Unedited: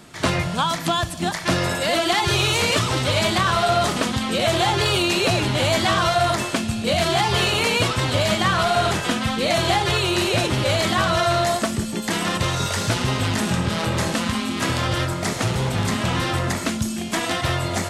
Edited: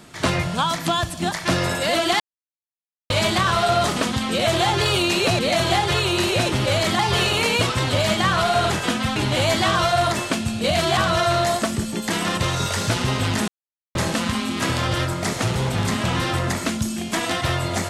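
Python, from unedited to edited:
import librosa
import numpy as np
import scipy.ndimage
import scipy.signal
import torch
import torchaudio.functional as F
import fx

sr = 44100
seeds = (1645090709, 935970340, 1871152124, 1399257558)

y = fx.edit(x, sr, fx.silence(start_s=2.2, length_s=0.9),
    fx.swap(start_s=5.39, length_s=1.81, other_s=9.37, other_length_s=1.6),
    fx.silence(start_s=13.48, length_s=0.47), tone=tone)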